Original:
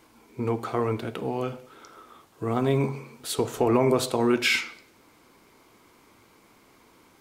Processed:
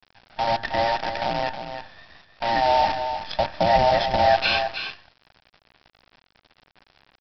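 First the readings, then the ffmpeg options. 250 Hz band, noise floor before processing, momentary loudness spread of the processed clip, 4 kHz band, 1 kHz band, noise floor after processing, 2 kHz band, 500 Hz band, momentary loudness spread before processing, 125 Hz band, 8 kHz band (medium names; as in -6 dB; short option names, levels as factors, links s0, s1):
-8.5 dB, -58 dBFS, 14 LU, +5.5 dB, +12.0 dB, -69 dBFS, +4.0 dB, +2.5 dB, 13 LU, -5.0 dB, under -10 dB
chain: -af "afftfilt=real='real(if(between(b,1,1008),(2*floor((b-1)/48)+1)*48-b,b),0)':imag='imag(if(between(b,1,1008),(2*floor((b-1)/48)+1)*48-b,b),0)*if(between(b,1,1008),-1,1)':win_size=2048:overlap=0.75,bandreject=f=50:t=h:w=6,bandreject=f=100:t=h:w=6,bandreject=f=150:t=h:w=6,bandreject=f=200:t=h:w=6,aecho=1:1:1.2:0.85,aresample=11025,acrusher=bits=5:dc=4:mix=0:aa=0.000001,aresample=44100,aecho=1:1:316:0.376"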